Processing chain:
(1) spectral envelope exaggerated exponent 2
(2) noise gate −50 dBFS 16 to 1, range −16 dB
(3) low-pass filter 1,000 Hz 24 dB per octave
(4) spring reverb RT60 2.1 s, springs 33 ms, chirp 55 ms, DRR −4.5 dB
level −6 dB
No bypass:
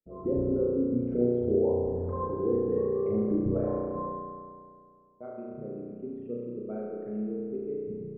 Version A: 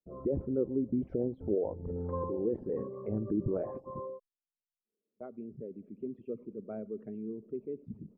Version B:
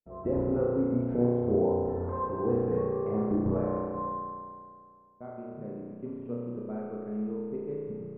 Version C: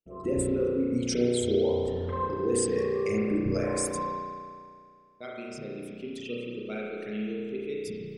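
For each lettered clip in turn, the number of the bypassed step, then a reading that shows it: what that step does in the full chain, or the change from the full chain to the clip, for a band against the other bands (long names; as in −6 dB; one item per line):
4, change in integrated loudness −6.0 LU
1, 1 kHz band +4.0 dB
3, 1 kHz band +3.5 dB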